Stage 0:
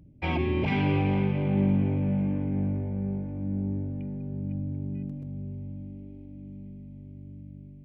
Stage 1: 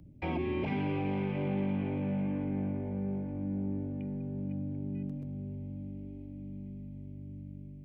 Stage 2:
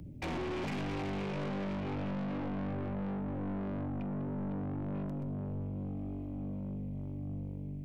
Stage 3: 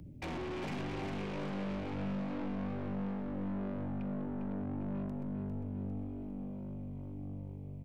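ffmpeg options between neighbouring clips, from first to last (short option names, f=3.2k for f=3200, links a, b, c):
-filter_complex "[0:a]acrossover=split=180|680|2700[a][b][c][d];[a]acompressor=threshold=-42dB:ratio=4[e];[b]acompressor=threshold=-32dB:ratio=4[f];[c]acompressor=threshold=-44dB:ratio=4[g];[d]acompressor=threshold=-57dB:ratio=4[h];[e][f][g][h]amix=inputs=4:normalize=0"
-af "aeval=exprs='(tanh(141*val(0)+0.2)-tanh(0.2))/141':c=same,volume=8dB"
-af "aecho=1:1:402|804|1206|1608|2010|2412:0.422|0.211|0.105|0.0527|0.0264|0.0132,volume=-3dB"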